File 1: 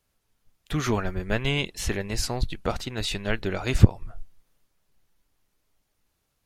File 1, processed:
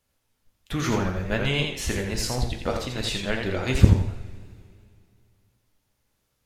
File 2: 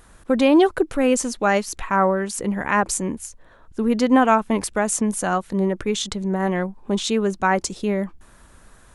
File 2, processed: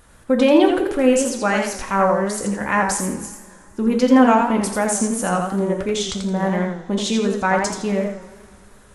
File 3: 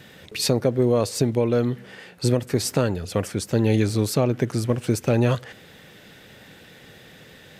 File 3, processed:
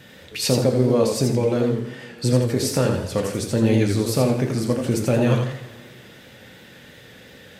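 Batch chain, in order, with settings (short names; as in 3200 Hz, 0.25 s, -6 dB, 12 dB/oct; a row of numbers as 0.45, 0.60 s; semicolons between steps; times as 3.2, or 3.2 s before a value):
two-slope reverb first 0.39 s, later 2.5 s, from -18 dB, DRR 4.5 dB; warbling echo 84 ms, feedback 31%, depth 124 cents, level -5.5 dB; gain -1 dB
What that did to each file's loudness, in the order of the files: +1.5, +2.0, +2.0 LU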